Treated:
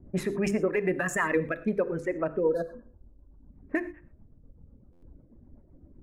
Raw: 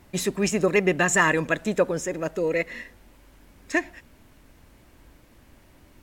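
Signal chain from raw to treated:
adaptive Wiener filter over 9 samples
time-frequency box erased 0:02.44–0:03.52, 1,700–3,600 Hz
reverb reduction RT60 1.8 s
mains-hum notches 50/100/150/200/250/300/350/400/450/500 Hz
low-pass that shuts in the quiet parts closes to 350 Hz, open at −23 dBFS
flat-topped bell 4,900 Hz −12.5 dB
in parallel at +2 dB: downward compressor, threshold −34 dBFS, peak gain reduction 17 dB
on the sum: brickwall limiter −15 dBFS, peak gain reduction 8.5 dB
rotating-speaker cabinet horn 8 Hz
on a send at −13.5 dB: convolution reverb, pre-delay 3 ms
on the sum: buffer that repeats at 0:04.92, samples 512, times 8

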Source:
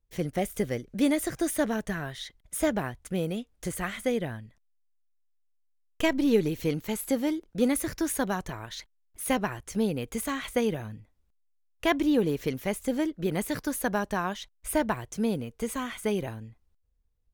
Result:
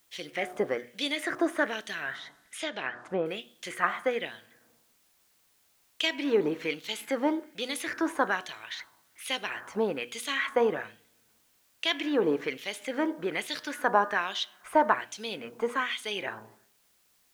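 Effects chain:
dynamic equaliser 370 Hz, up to +7 dB, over −38 dBFS, Q 0.8
in parallel at −1.5 dB: brickwall limiter −17.5 dBFS, peak gain reduction 11 dB
on the sum: hum removal 121.5 Hz, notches 15
on a send at −16 dB: convolution reverb RT60 0.95 s, pre-delay 5 ms
on the sum: auto-filter band-pass sine 1.2 Hz 1,000–3,700 Hz
background noise white −74 dBFS
0:02.15–0:03.26: treble cut that deepens with the level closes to 2,000 Hz, closed at −33 dBFS
level +6.5 dB

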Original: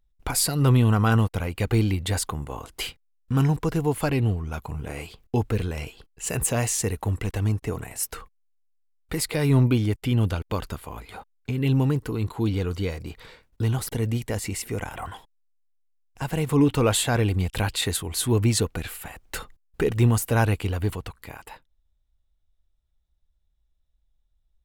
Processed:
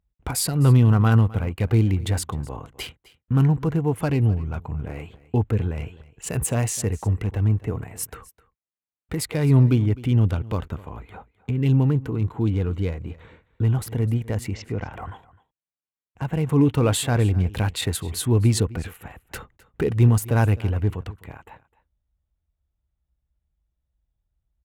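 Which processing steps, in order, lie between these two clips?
adaptive Wiener filter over 9 samples
high-pass filter 71 Hz
low-shelf EQ 180 Hz +8.5 dB
0:14.53–0:14.93: Butterworth low-pass 6,100 Hz 48 dB per octave
single-tap delay 257 ms −20 dB
level −1.5 dB

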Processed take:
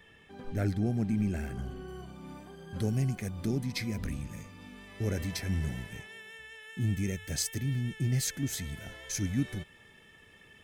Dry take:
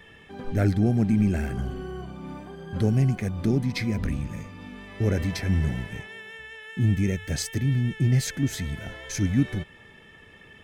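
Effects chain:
high-shelf EQ 4,800 Hz +4 dB, from 0:01.88 +11.5 dB
level −8 dB

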